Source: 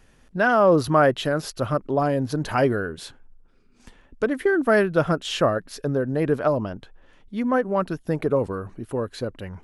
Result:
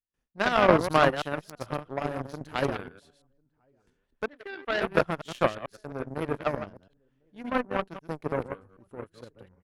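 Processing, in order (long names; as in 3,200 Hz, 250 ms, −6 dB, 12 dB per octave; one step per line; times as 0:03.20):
delay that plays each chunk backwards 111 ms, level −4.5 dB
0:04.28–0:04.82: three-way crossover with the lows and the highs turned down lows −13 dB, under 460 Hz, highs −16 dB, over 4,500 Hz
slap from a distant wall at 180 metres, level −22 dB
noise gate with hold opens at −44 dBFS
harmonic generator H 3 −13 dB, 7 −28 dB, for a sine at −4 dBFS
level +1 dB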